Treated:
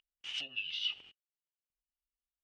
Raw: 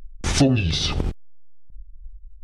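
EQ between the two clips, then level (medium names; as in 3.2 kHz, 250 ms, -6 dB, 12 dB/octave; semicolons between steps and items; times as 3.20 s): band-pass filter 2.9 kHz, Q 16; +1.5 dB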